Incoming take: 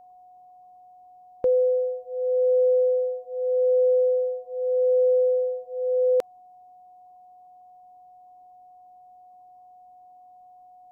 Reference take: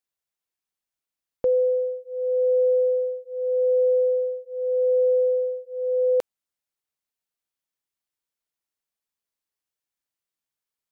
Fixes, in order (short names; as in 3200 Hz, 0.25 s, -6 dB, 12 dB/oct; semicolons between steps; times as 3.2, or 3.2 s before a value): notch 730 Hz, Q 30; expander -43 dBFS, range -21 dB